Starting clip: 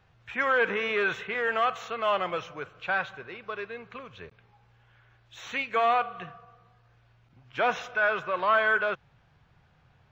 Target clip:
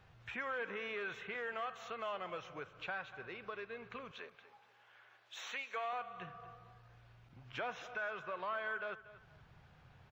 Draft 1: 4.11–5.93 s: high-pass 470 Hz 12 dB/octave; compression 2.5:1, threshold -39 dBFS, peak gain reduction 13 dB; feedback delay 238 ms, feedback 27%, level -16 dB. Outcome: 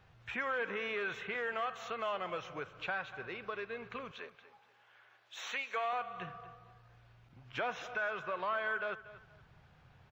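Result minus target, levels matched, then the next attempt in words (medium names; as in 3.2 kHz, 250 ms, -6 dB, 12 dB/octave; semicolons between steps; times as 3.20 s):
compression: peak gain reduction -4.5 dB
4.11–5.93 s: high-pass 470 Hz 12 dB/octave; compression 2.5:1, threshold -46.5 dBFS, peak gain reduction 17.5 dB; feedback delay 238 ms, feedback 27%, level -16 dB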